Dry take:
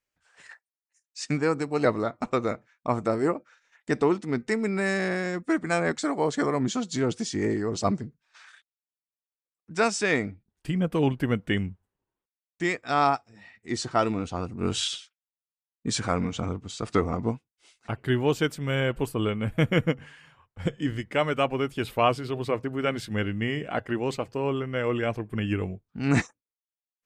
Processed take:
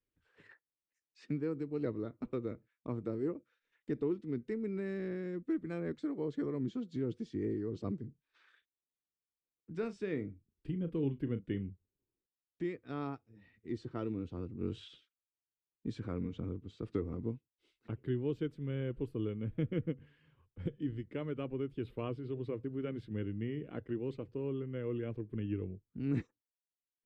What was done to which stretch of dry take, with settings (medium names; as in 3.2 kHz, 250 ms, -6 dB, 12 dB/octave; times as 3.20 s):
8.00–11.70 s: doubling 36 ms -12.5 dB
whole clip: FFT filter 120 Hz 0 dB, 200 Hz -3 dB, 320 Hz +1 dB, 470 Hz -3 dB, 720 Hz -19 dB, 1 kHz -15 dB, 3.6 kHz -13 dB, 6.6 kHz -27 dB; three bands compressed up and down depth 40%; trim -8.5 dB